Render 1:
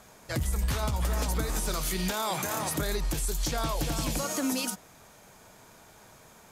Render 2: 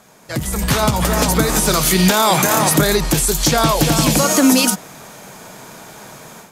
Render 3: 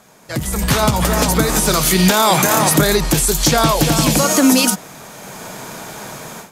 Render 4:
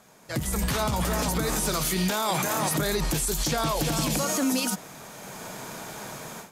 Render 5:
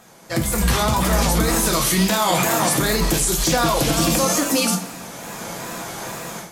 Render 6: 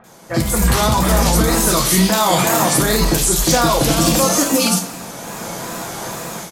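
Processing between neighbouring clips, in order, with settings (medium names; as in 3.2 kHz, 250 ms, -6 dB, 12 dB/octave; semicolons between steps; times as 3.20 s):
level rider gain up to 12 dB; resonant low shelf 110 Hz -8.5 dB, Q 1.5; trim +4.5 dB
level rider gain up to 6 dB
peak limiter -10 dBFS, peak gain reduction 8.5 dB; trim -7 dB
wow and flutter 110 cents; two-slope reverb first 0.37 s, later 1.9 s, DRR 3 dB; trim +6 dB
bands offset in time lows, highs 40 ms, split 2.2 kHz; trim +4 dB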